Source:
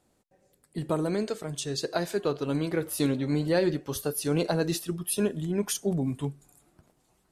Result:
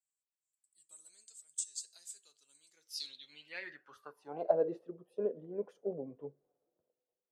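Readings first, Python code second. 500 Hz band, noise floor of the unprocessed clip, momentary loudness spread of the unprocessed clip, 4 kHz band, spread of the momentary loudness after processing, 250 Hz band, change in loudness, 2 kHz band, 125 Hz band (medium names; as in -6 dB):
-8.5 dB, -70 dBFS, 6 LU, -11.5 dB, 22 LU, -20.5 dB, -10.5 dB, -12.5 dB, -26.5 dB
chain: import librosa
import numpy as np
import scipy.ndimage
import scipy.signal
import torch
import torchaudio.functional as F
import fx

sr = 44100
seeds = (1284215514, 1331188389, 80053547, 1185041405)

y = fx.filter_sweep_bandpass(x, sr, from_hz=7800.0, to_hz=500.0, start_s=2.64, end_s=4.67, q=7.6)
y = fx.band_widen(y, sr, depth_pct=40)
y = y * librosa.db_to_amplitude(2.5)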